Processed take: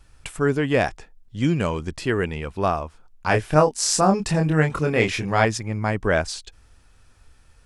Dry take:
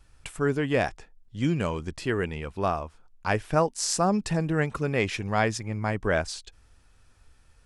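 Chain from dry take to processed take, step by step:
0:03.27–0:05.45: double-tracking delay 26 ms −4 dB
level +4.5 dB

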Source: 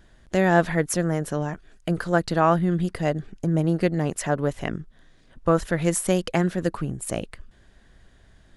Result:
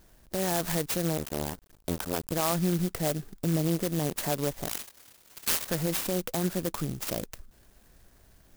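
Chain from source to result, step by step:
0:01.17–0:02.32: sub-harmonics by changed cycles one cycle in 2, muted
low-shelf EQ 390 Hz −5 dB
brickwall limiter −17.5 dBFS, peak gain reduction 10 dB
0:04.69–0:05.68: voice inversion scrambler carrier 3,900 Hz
converter with an unsteady clock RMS 0.13 ms

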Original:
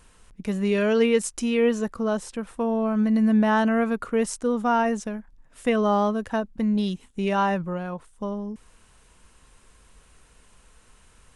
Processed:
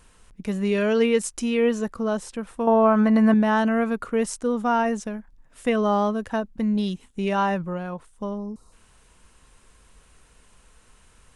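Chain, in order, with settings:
0:02.67–0:03.34: parametric band 1,000 Hz +13 dB 2.5 octaves
0:08.38–0:08.72: gain on a spectral selection 1,400–3,700 Hz −16 dB

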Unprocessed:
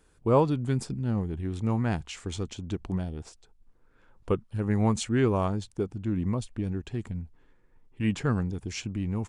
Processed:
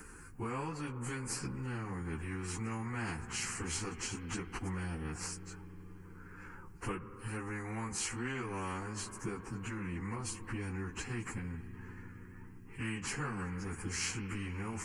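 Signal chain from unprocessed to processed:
downward compressor 6 to 1, threshold −30 dBFS, peak gain reduction 13.5 dB
phaser with its sweep stopped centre 1,500 Hz, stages 4
spring reverb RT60 3.1 s, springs 33 ms, chirp 80 ms, DRR 18 dB
time stretch by phase vocoder 1.6×
every bin compressed towards the loudest bin 2 to 1
level +4 dB

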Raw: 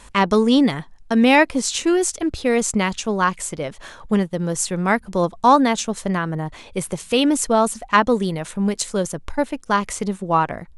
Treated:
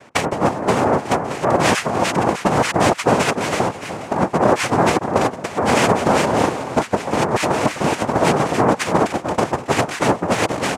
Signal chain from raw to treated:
delay that swaps between a low-pass and a high-pass 299 ms, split 1,300 Hz, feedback 59%, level −9 dB
cochlear-implant simulation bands 2
compressor whose output falls as the input rises −19 dBFS, ratio −0.5
high shelf with overshoot 3,000 Hz −7 dB, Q 1.5
one half of a high-frequency compander decoder only
level +4 dB

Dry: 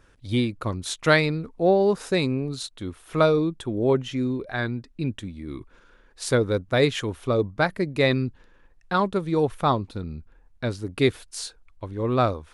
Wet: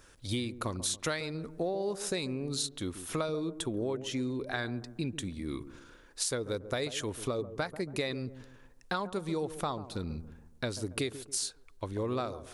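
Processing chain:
bass and treble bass −4 dB, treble +10 dB
downward compressor 12 to 1, threshold −30 dBFS, peak gain reduction 18 dB
delay with a low-pass on its return 140 ms, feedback 39%, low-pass 900 Hz, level −12 dB

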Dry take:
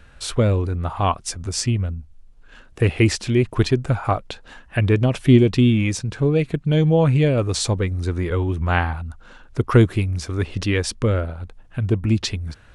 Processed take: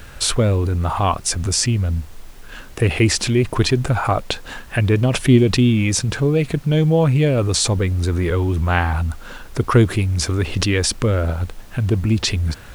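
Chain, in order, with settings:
high-shelf EQ 7,600 Hz +5.5 dB
in parallel at −1.5 dB: compressor whose output falls as the input rises −28 dBFS, ratio −1
on the sum: background noise pink −47 dBFS

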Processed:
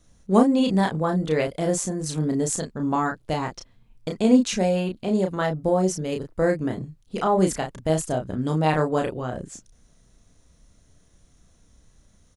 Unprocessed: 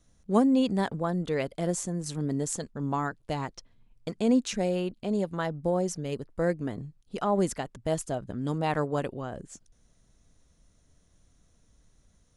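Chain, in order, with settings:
double-tracking delay 32 ms −4.5 dB
level +5 dB

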